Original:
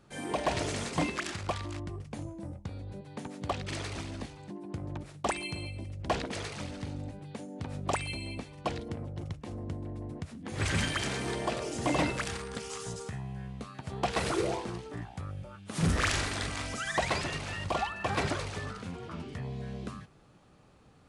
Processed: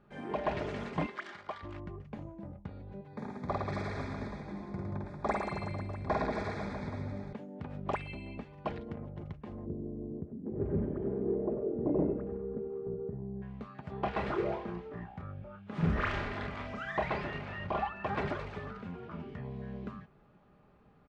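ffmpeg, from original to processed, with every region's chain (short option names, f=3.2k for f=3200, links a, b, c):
-filter_complex "[0:a]asettb=1/sr,asplit=3[a][b][c];[a]atrim=end=1.064[d];[b]atrim=start=1.06:end=1.63,asetpts=PTS-STARTPTS,afade=t=in:d=0.004:c=qsin,afade=t=out:st=0.566:d=0.004:c=qsin,highpass=f=830:p=1,bandreject=f=2.6k:w=6.4[e];[c]atrim=start=1.626[f];[d][e]acrossfade=d=0.004:c1=hsin:c2=qsin[g];[g][f]acrossfade=d=0.004:c1=qsin:c2=hsin,asettb=1/sr,asplit=3[h][i][j];[h]atrim=end=3.084[k];[i]atrim=start=3.08:end=7.33,asetpts=PTS-STARTPTS,afade=t=in:d=0.004:c=qsin,afade=t=out:st=4.246:d=0.004:c=qsin,asuperstop=centerf=2900:order=4:qfactor=2.7,highshelf=f=4.9k:g=5,aecho=1:1:50|110|182|268.4|372.1|496.5|645.8|825:0.794|0.631|0.501|0.398|0.316|0.251|0.2|0.158,atrim=end_sample=187425[l];[j]atrim=start=7.326[m];[k][l]acrossfade=d=0.004:c1=hsin:c2=qsin[n];[n][m]acrossfade=d=0.004:c1=qsin:c2=hsin,asettb=1/sr,asplit=3[o][p][q];[o]atrim=end=9.664[r];[p]atrim=start=9.66:end=13.42,asetpts=PTS-STARTPTS,afade=t=in:d=0.004:c=qsin,afade=t=out:st=3.756:d=0.004:c=qsin,lowpass=f=400:t=q:w=2.8,aecho=1:1:96:0.299,atrim=end_sample=165816[s];[q]atrim=start=13.416[t];[r][s]acrossfade=d=0.004:c1=hsin:c2=qsin[u];[u][t]acrossfade=d=0.004:c1=qsin:c2=hsin,asettb=1/sr,asplit=3[v][w][x];[v]atrim=end=13.994[y];[w]atrim=start=13.99:end=17.89,asetpts=PTS-STARTPTS,afade=t=in:d=0.004:c=qsin,afade=t=out:st=3.896:d=0.004:c=qsin,highshelf=f=7.2k:g=-11,asplit=2[z][aa];[aa]adelay=29,volume=-6.5dB[ab];[z][ab]amix=inputs=2:normalize=0,atrim=end_sample=171990[ac];[x]atrim=start=17.886[ad];[y][ac]acrossfade=d=0.004:c1=hsin:c2=qsin[ae];[ae][ad]acrossfade=d=0.004:c1=qsin:c2=hsin,lowpass=2.1k,aecho=1:1:4.9:0.37,volume=-3dB"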